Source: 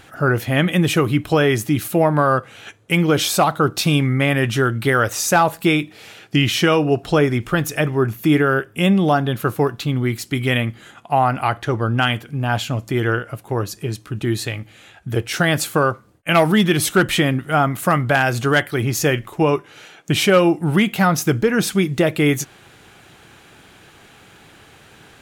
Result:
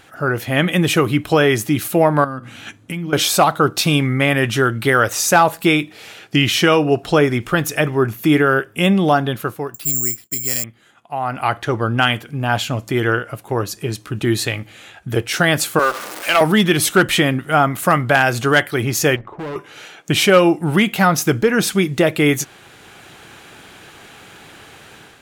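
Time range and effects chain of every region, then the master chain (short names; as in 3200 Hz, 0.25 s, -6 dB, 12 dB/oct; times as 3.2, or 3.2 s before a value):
2.24–3.13 resonant low shelf 340 Hz +6.5 dB, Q 3 + notches 60/120/180/240/300/360/420 Hz + compressor 4:1, threshold -27 dBFS
9.74–10.64 high shelf 5600 Hz -10 dB + expander -38 dBFS + careless resampling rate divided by 6×, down filtered, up zero stuff
15.79–16.41 zero-crossing step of -23.5 dBFS + HPF 440 Hz + tube stage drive 8 dB, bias 0.25
19.16–19.56 compressor 3:1, threshold -22 dBFS + LPF 1300 Hz + hard clip -27 dBFS
whole clip: AGC gain up to 7 dB; low shelf 200 Hz -5.5 dB; gain -1 dB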